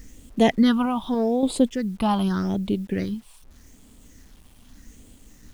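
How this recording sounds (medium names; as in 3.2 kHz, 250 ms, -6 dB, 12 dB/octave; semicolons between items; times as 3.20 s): random-step tremolo 3.5 Hz; phasing stages 6, 0.83 Hz, lowest notch 450–1600 Hz; a quantiser's noise floor 10-bit, dither none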